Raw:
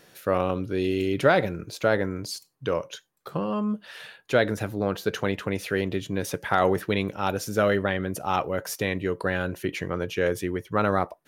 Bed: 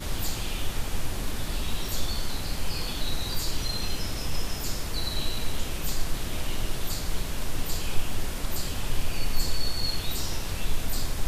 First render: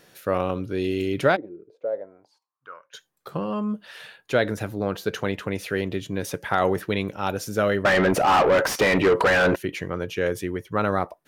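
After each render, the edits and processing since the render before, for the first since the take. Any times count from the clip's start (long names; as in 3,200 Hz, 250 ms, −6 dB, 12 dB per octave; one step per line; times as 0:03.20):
0:01.35–0:02.93: resonant band-pass 290 Hz → 1,700 Hz, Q 6.6
0:07.85–0:09.56: mid-hump overdrive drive 32 dB, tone 1,600 Hz, clips at −9 dBFS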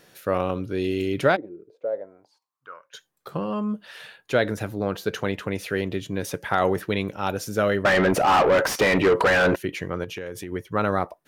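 0:10.04–0:10.52: downward compressor 5 to 1, threshold −30 dBFS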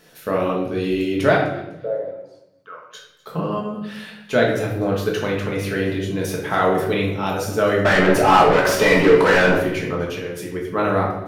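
delay with a high-pass on its return 251 ms, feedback 32%, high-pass 2,100 Hz, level −19 dB
rectangular room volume 240 cubic metres, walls mixed, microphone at 1.5 metres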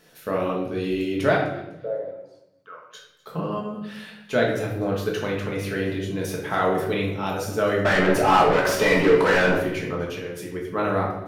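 level −4 dB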